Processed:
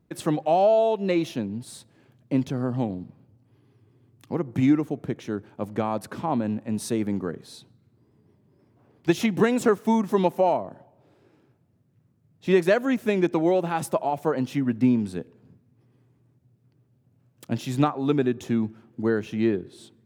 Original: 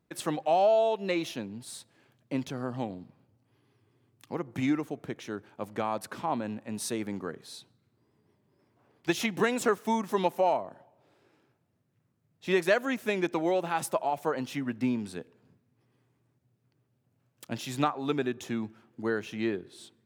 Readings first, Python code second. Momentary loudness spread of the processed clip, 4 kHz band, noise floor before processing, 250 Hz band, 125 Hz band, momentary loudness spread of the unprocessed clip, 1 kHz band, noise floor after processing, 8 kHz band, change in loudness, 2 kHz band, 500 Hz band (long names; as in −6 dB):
11 LU, 0.0 dB, −74 dBFS, +8.5 dB, +10.0 dB, 14 LU, +3.0 dB, −65 dBFS, 0.0 dB, +6.0 dB, +1.0 dB, +5.5 dB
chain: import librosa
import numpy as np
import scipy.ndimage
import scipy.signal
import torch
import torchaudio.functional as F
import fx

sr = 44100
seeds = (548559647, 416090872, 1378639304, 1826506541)

y = fx.low_shelf(x, sr, hz=490.0, db=11.0)